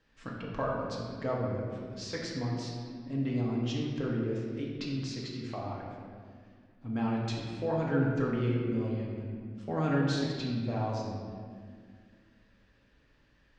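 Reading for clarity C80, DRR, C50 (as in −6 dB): 2.0 dB, −4.0 dB, 0.5 dB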